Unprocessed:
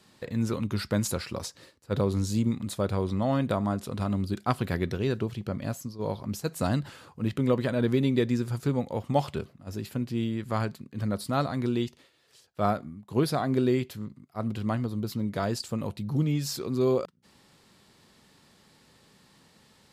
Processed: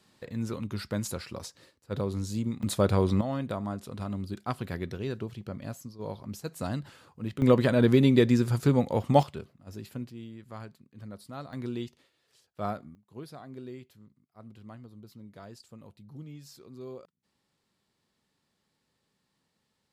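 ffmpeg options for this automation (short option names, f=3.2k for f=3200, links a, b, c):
-af "asetnsamples=n=441:p=0,asendcmd='2.63 volume volume 4dB;3.21 volume volume -6dB;7.42 volume volume 4dB;9.23 volume volume -6.5dB;10.1 volume volume -14dB;11.53 volume volume -7dB;12.95 volume volume -18dB',volume=-5dB"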